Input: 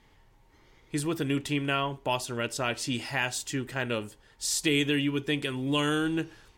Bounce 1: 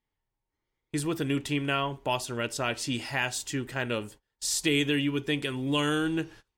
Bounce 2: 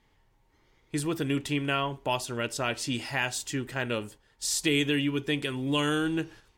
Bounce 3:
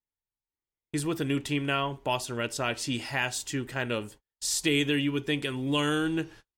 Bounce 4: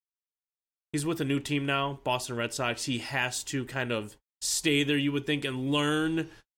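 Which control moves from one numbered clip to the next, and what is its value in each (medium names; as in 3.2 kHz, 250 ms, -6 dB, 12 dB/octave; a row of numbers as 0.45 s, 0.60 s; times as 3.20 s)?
gate, range: -25 dB, -6 dB, -40 dB, -60 dB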